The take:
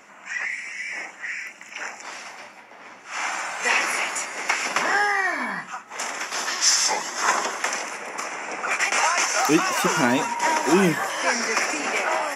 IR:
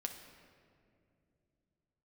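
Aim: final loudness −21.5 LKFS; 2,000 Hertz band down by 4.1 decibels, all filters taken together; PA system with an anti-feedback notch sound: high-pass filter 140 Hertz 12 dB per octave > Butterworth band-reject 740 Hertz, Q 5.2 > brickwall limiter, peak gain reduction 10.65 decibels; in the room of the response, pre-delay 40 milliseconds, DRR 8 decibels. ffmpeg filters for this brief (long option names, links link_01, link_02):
-filter_complex "[0:a]equalizer=frequency=2000:width_type=o:gain=-5,asplit=2[link_01][link_02];[1:a]atrim=start_sample=2205,adelay=40[link_03];[link_02][link_03]afir=irnorm=-1:irlink=0,volume=-7dB[link_04];[link_01][link_04]amix=inputs=2:normalize=0,highpass=140,asuperstop=centerf=740:order=8:qfactor=5.2,volume=6dB,alimiter=limit=-11.5dB:level=0:latency=1"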